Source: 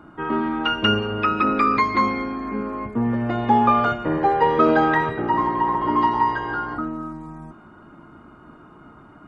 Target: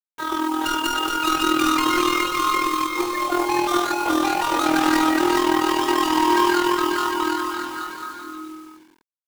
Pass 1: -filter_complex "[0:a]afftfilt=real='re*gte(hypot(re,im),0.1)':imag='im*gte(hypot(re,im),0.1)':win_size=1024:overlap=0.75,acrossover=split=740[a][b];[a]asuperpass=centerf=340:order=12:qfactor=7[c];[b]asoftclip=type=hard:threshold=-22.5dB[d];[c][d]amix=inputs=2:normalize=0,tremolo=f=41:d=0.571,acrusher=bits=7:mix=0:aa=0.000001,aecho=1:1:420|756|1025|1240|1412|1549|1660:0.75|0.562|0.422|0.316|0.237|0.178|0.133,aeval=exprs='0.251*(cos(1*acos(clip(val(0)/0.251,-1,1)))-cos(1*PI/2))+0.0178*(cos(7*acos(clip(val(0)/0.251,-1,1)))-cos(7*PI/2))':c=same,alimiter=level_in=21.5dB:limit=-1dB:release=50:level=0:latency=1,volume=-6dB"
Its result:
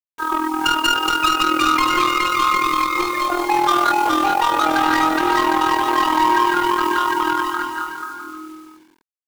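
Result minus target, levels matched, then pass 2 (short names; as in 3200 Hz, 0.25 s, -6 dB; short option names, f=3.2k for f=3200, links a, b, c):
hard clip: distortion -6 dB
-filter_complex "[0:a]afftfilt=real='re*gte(hypot(re,im),0.1)':imag='im*gte(hypot(re,im),0.1)':win_size=1024:overlap=0.75,acrossover=split=740[a][b];[a]asuperpass=centerf=340:order=12:qfactor=7[c];[b]asoftclip=type=hard:threshold=-32.5dB[d];[c][d]amix=inputs=2:normalize=0,tremolo=f=41:d=0.571,acrusher=bits=7:mix=0:aa=0.000001,aecho=1:1:420|756|1025|1240|1412|1549|1660:0.75|0.562|0.422|0.316|0.237|0.178|0.133,aeval=exprs='0.251*(cos(1*acos(clip(val(0)/0.251,-1,1)))-cos(1*PI/2))+0.0178*(cos(7*acos(clip(val(0)/0.251,-1,1)))-cos(7*PI/2))':c=same,alimiter=level_in=21.5dB:limit=-1dB:release=50:level=0:latency=1,volume=-6dB"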